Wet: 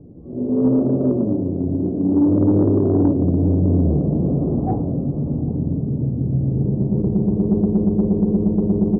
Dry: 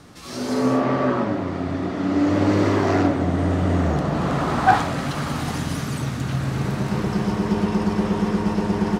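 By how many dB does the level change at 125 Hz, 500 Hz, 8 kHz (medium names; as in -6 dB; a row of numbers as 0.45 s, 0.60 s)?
+4.5 dB, +1.5 dB, under -40 dB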